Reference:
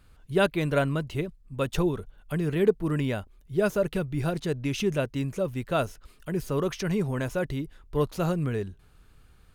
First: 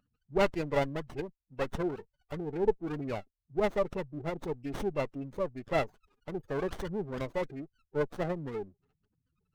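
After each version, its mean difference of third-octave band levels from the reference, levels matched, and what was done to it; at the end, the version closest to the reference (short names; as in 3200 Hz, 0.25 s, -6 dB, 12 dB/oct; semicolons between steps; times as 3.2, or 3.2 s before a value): 6.5 dB: spectral gate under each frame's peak -20 dB strong; weighting filter A; running maximum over 17 samples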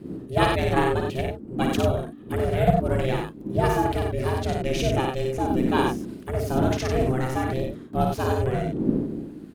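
9.0 dB: wind noise 87 Hz -35 dBFS; ring modulator 260 Hz; loudspeakers at several distances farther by 19 m -4 dB, 32 m -5 dB; gain +4 dB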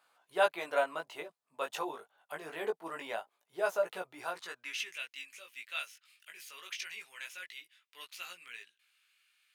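12.0 dB: HPF 120 Hz; high-pass sweep 770 Hz -> 2400 Hz, 4.16–5; chorus 0.25 Hz, delay 16.5 ms, depth 3 ms; gain -3 dB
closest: first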